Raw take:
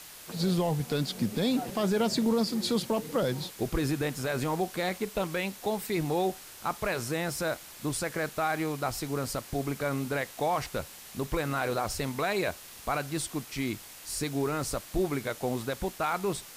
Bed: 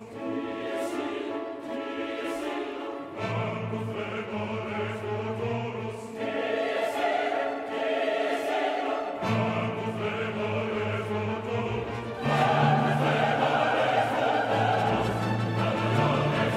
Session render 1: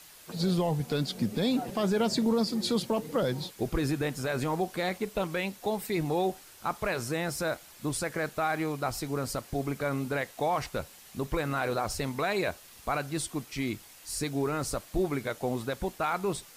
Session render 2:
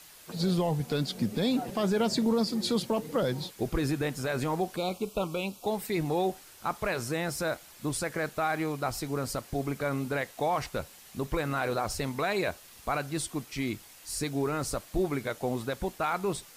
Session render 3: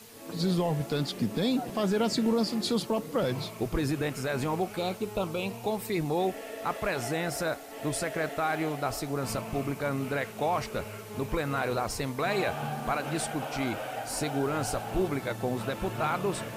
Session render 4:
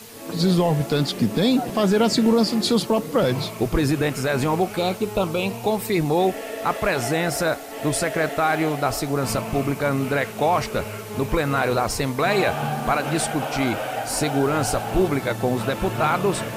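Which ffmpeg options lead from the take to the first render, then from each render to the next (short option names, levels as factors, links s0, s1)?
-af "afftdn=nr=6:nf=-48"
-filter_complex "[0:a]asettb=1/sr,asplit=3[s0][s1][s2];[s0]atrim=end=4.764[s3];[s1]atrim=start=4.76:end=5.67,asetpts=PTS-STARTPTS,afade=t=in:d=0.004:c=qsin,afade=t=out:st=0.906:d=0.004:c=qsin,asuperstop=centerf=1800:order=8:qfactor=1.9[s4];[s2]atrim=start=5.666[s5];[s3][s4]acrossfade=d=0.004:c1=hsin:c2=qsin[s6];[s6][s5]acrossfade=d=0.004:c1=qsin:c2=hsin"
-filter_complex "[1:a]volume=0.251[s0];[0:a][s0]amix=inputs=2:normalize=0"
-af "volume=2.66"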